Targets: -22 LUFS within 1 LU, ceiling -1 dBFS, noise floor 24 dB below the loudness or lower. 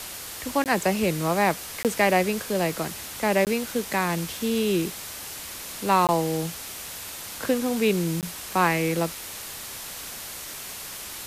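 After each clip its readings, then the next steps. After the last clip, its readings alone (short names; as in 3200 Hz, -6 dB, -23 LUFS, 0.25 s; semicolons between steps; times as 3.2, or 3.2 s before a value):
dropouts 5; longest dropout 18 ms; noise floor -38 dBFS; noise floor target -50 dBFS; loudness -26.0 LUFS; peak -8.5 dBFS; loudness target -22.0 LUFS
-> interpolate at 0.64/1.83/3.45/6.07/8.21, 18 ms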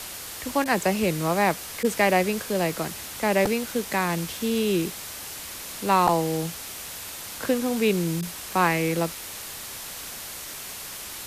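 dropouts 0; noise floor -38 dBFS; noise floor target -50 dBFS
-> denoiser 12 dB, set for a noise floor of -38 dBFS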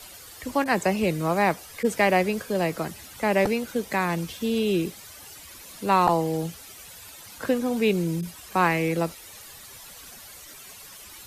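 noise floor -45 dBFS; noise floor target -49 dBFS
-> denoiser 6 dB, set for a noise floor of -45 dBFS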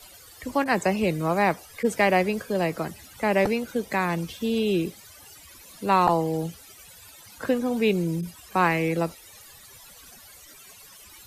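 noise floor -49 dBFS; loudness -25.0 LUFS; peak -7.0 dBFS; loudness target -22.0 LUFS
-> gain +3 dB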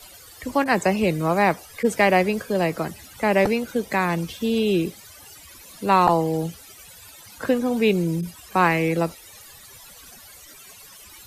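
loudness -22.0 LUFS; peak -4.0 dBFS; noise floor -46 dBFS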